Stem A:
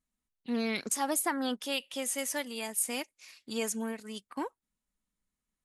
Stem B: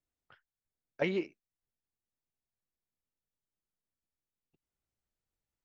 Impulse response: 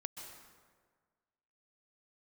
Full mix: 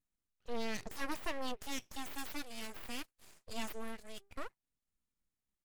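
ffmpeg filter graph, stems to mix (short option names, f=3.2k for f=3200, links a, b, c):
-filter_complex "[0:a]deesser=0.6,lowshelf=f=170:g=6,bandreject=f=50:t=h:w=6,bandreject=f=100:t=h:w=6,bandreject=f=150:t=h:w=6,bandreject=f=200:t=h:w=6,volume=-5.5dB[a];[1:a]highpass=960,adelay=100,volume=-19.5dB,asplit=2[b][c];[c]volume=-5dB,aecho=0:1:121|242|363|484|605|726:1|0.43|0.185|0.0795|0.0342|0.0147[d];[a][b][d]amix=inputs=3:normalize=0,aeval=exprs='abs(val(0))':c=same"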